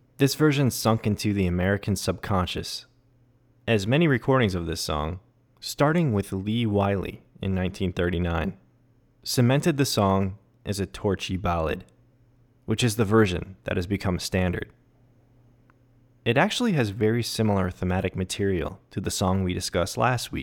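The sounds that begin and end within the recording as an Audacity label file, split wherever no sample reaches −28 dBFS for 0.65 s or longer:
3.680000	8.500000	sound
9.270000	11.780000	sound
12.690000	14.630000	sound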